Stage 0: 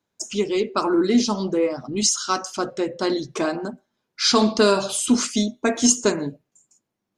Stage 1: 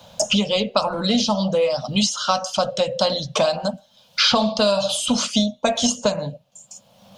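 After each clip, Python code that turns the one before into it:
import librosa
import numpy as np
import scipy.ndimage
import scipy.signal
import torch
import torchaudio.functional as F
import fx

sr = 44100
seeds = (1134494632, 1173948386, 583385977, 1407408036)

y = fx.curve_eq(x, sr, hz=(200.0, 370.0, 540.0, 2000.0, 3100.0, 7400.0), db=(0, -26, 7, -11, 5, -6))
y = fx.band_squash(y, sr, depth_pct=100)
y = y * librosa.db_to_amplitude(3.5)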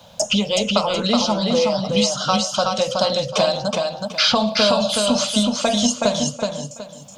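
y = fx.echo_feedback(x, sr, ms=372, feedback_pct=27, wet_db=-3.5)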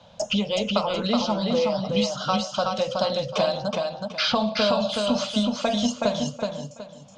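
y = fx.air_absorb(x, sr, metres=120.0)
y = y * librosa.db_to_amplitude(-4.0)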